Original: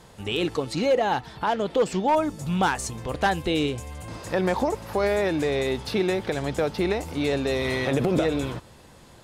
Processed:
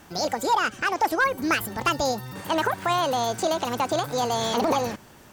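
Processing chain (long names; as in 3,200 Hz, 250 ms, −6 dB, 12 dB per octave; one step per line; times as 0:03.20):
wrong playback speed 45 rpm record played at 78 rpm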